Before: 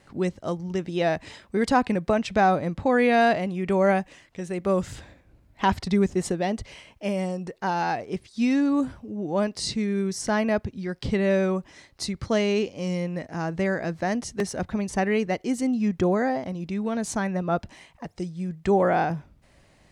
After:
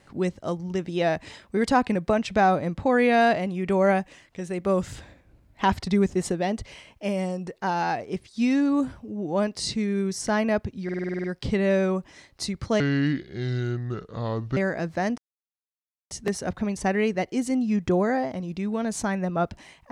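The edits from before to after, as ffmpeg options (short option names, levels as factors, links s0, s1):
-filter_complex "[0:a]asplit=12[s0][s1][s2][s3][s4][s5][s6][s7][s8][s9][s10][s11];[s0]atrim=end=10.892[s12];[s1]atrim=start=10.838:end=10.892[s13];[s2]atrim=start=10.838:end=10.892[s14];[s3]atrim=start=10.838:end=10.892[s15];[s4]atrim=start=10.838:end=10.892[s16];[s5]atrim=start=10.838:end=10.892[s17];[s6]atrim=start=10.838:end=10.892[s18];[s7]atrim=start=10.838:end=10.892[s19];[s8]atrim=start=10.838:end=12.404[s20];[s9]atrim=start=12.4:end=13.62,asetpts=PTS-STARTPTS,asetrate=30429,aresample=44100[s21];[s10]atrim=start=13.616:end=14.23,asetpts=PTS-STARTPTS,afade=t=out:st=0.61:d=0.004:c=hsin,apad=pad_dur=0.93[s22];[s11]atrim=start=14.23,asetpts=PTS-STARTPTS,afade=t=in:d=0.004:c=hsin[s23];[s12][s13]acrossfade=d=0.004:c1=hsin:c2=hsin[s24];[s24][s14]acrossfade=d=0.004:c1=hsin:c2=hsin[s25];[s25][s15]acrossfade=d=0.004:c1=hsin:c2=hsin[s26];[s26][s16]acrossfade=d=0.004:c1=hsin:c2=hsin[s27];[s27][s17]acrossfade=d=0.004:c1=hsin:c2=hsin[s28];[s28][s18]acrossfade=d=0.004:c1=hsin:c2=hsin[s29];[s29][s19]acrossfade=d=0.004:c1=hsin:c2=hsin[s30];[s30][s20]acrossfade=d=0.004:c1=hsin:c2=hsin[s31];[s31][s21]acrossfade=d=0.004:c1=hsin:c2=hsin[s32];[s22][s23]concat=n=2:v=0:a=1[s33];[s32][s33]acrossfade=d=0.004:c1=hsin:c2=hsin"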